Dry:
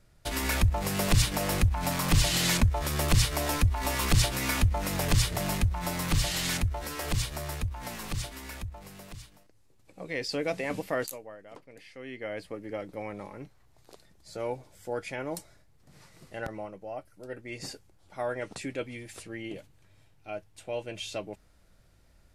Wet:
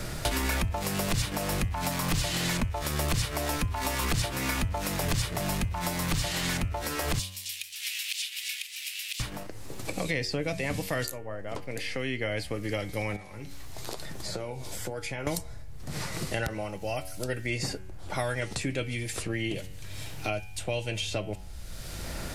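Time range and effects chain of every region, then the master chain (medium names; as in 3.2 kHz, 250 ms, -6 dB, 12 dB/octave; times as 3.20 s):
7.19–9.20 s: steep high-pass 2.7 kHz + modulated delay 267 ms, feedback 34%, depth 99 cents, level -10 dB
13.16–15.27 s: compression 2.5:1, threshold -53 dBFS + flange 1.1 Hz, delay 6.2 ms, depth 7.2 ms, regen +65%
whole clip: de-hum 93.56 Hz, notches 34; three bands compressed up and down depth 100%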